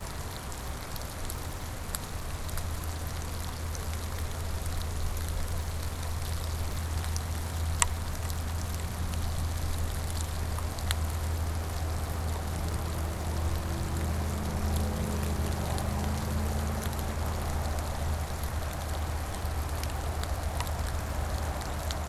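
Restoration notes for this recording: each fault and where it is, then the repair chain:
crackle 34/s -38 dBFS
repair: de-click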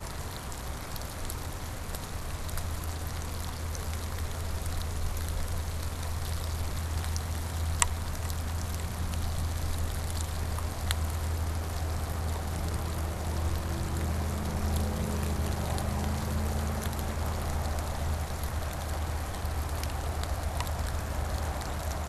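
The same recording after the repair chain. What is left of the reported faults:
none

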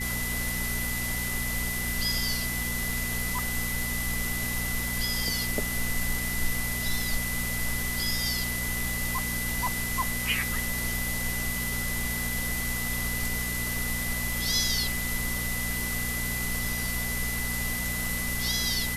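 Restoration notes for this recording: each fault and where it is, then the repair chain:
crackle 30/s -35 dBFS
hum 60 Hz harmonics 4 -35 dBFS
tone 2000 Hz -33 dBFS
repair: de-click; de-hum 60 Hz, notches 4; notch 2000 Hz, Q 30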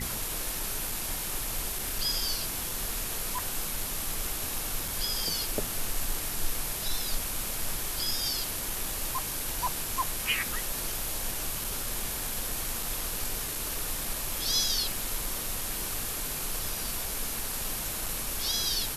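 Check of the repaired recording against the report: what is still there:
none

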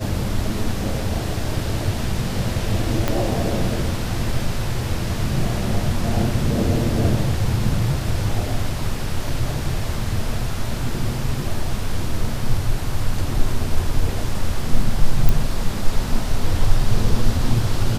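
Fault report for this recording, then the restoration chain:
3.08 pop -5 dBFS
15.29 pop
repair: de-click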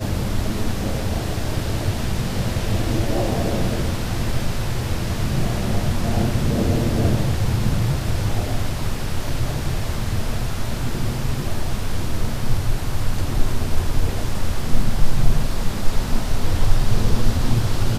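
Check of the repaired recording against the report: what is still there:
3.08 pop

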